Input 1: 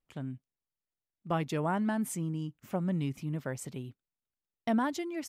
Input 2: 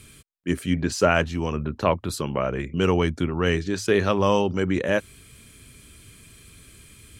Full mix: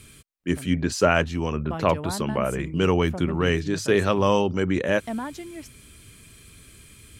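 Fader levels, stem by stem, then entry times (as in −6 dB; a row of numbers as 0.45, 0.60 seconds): −2.0, 0.0 decibels; 0.40, 0.00 seconds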